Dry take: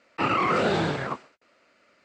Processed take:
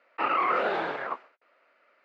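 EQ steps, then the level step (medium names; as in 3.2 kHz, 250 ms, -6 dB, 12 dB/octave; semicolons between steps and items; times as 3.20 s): band-pass 540–2200 Hz; 0.0 dB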